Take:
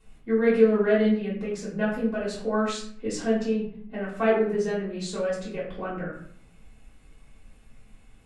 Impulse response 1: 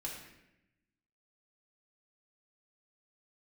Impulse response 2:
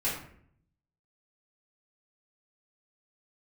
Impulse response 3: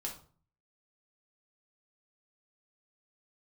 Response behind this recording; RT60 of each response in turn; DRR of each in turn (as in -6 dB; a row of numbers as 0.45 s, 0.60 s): 2; 0.90 s, 0.60 s, 0.45 s; -3.5 dB, -9.5 dB, -2.0 dB